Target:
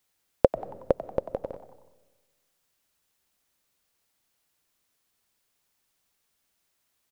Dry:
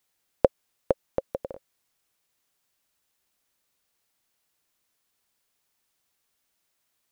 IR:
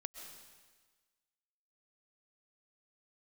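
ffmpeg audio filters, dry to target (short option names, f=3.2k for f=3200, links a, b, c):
-filter_complex "[0:a]asplit=5[a][b][c][d][e];[b]adelay=92,afreqshift=110,volume=-14.5dB[f];[c]adelay=184,afreqshift=220,volume=-21.6dB[g];[d]adelay=276,afreqshift=330,volume=-28.8dB[h];[e]adelay=368,afreqshift=440,volume=-35.9dB[i];[a][f][g][h][i]amix=inputs=5:normalize=0,asplit=2[j][k];[1:a]atrim=start_sample=2205,lowshelf=f=310:g=11.5[l];[k][l]afir=irnorm=-1:irlink=0,volume=-11dB[m];[j][m]amix=inputs=2:normalize=0,volume=-1dB"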